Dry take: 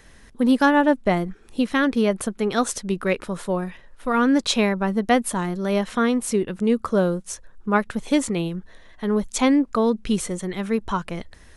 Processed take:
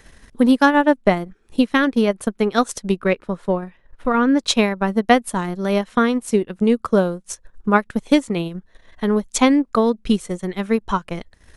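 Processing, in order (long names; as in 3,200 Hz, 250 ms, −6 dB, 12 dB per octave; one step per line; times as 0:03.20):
transient designer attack +5 dB, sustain −11 dB
0:02.97–0:04.37: low-pass filter 3,500 Hz → 2,000 Hz 6 dB per octave
level +1.5 dB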